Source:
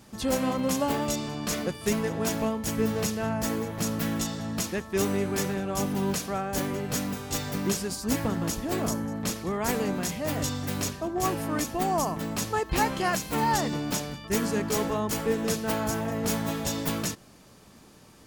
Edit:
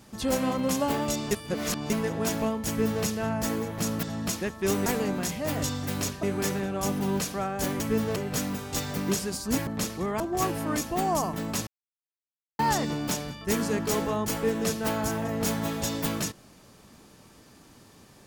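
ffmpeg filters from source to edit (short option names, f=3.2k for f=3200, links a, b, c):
-filter_complex "[0:a]asplit=12[a][b][c][d][e][f][g][h][i][j][k][l];[a]atrim=end=1.312[m];[b]atrim=start=1.308:end=1.902,asetpts=PTS-STARTPTS,areverse[n];[c]atrim=start=1.898:end=4.032[o];[d]atrim=start=4.338:end=5.172[p];[e]atrim=start=9.658:end=11.032[q];[f]atrim=start=5.168:end=6.742[r];[g]atrim=start=2.678:end=3.042[s];[h]atrim=start=6.738:end=8.252[t];[i]atrim=start=9.128:end=9.662[u];[j]atrim=start=11.028:end=12.5,asetpts=PTS-STARTPTS,afade=t=out:st=1.468:d=0.004:c=hsin[v];[k]atrim=start=12.5:end=13.42,asetpts=PTS-STARTPTS,volume=0[w];[l]atrim=start=13.42,asetpts=PTS-STARTPTS,afade=t=in:d=0.004:c=hsin[x];[m][n]acrossfade=d=0.004:c1=hsin:c2=hsin[y];[y][o]acrossfade=d=0.004:c1=hsin:c2=hsin[z];[z][p]acrossfade=d=0.004:c1=hsin:c2=hsin[aa];[aa][q]acrossfade=d=0.004:c1=hsin:c2=hsin[ab];[ab][r]acrossfade=d=0.004:c1=hsin:c2=hsin[ac];[ac][s]acrossfade=d=0.004:c1=hsin:c2=hsin[ad];[ad][t]acrossfade=d=0.004:c1=hsin:c2=hsin[ae];[ae][u]acrossfade=d=0.004:c1=hsin:c2=hsin[af];[v][w][x]concat=n=3:v=0:a=1[ag];[af][ag]acrossfade=d=0.004:c1=hsin:c2=hsin"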